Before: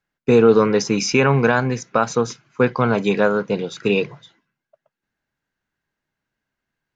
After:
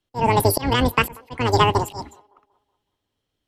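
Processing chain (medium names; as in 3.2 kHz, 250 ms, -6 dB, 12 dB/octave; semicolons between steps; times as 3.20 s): octave divider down 2 oct, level -3 dB; bass shelf 180 Hz +5 dB; speed mistake 7.5 ips tape played at 15 ips; slow attack 289 ms; feedback echo behind a band-pass 187 ms, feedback 41%, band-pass 690 Hz, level -23 dB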